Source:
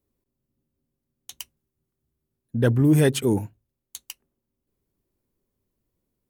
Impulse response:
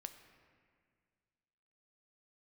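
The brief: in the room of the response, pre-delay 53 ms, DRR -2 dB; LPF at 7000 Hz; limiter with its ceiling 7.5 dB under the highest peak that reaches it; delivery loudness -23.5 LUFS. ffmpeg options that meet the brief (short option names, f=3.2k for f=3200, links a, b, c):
-filter_complex "[0:a]lowpass=7k,alimiter=limit=-15dB:level=0:latency=1,asplit=2[a][b];[1:a]atrim=start_sample=2205,adelay=53[c];[b][c]afir=irnorm=-1:irlink=0,volume=7dB[d];[a][d]amix=inputs=2:normalize=0,volume=-2dB"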